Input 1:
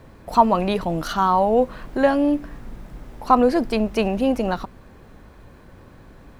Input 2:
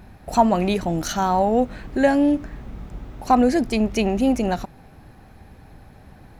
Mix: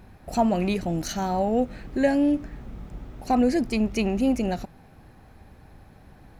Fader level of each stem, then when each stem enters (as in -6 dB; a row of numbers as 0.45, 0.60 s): -14.0, -4.5 dB; 0.00, 0.00 s